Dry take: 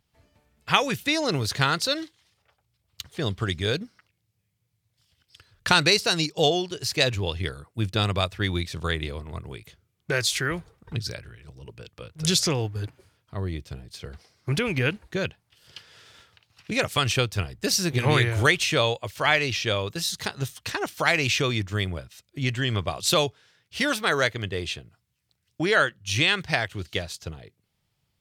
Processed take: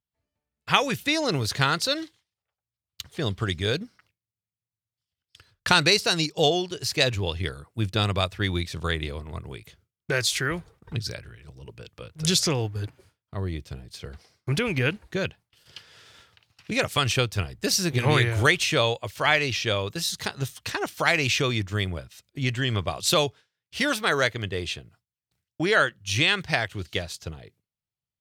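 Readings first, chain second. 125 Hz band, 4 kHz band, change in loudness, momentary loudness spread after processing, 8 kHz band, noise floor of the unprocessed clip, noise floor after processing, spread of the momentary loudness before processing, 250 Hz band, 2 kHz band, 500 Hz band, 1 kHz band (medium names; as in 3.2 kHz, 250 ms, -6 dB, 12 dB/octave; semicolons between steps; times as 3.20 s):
0.0 dB, 0.0 dB, 0.0 dB, 17 LU, 0.0 dB, -75 dBFS, under -85 dBFS, 17 LU, 0.0 dB, 0.0 dB, 0.0 dB, 0.0 dB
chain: gate with hold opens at -47 dBFS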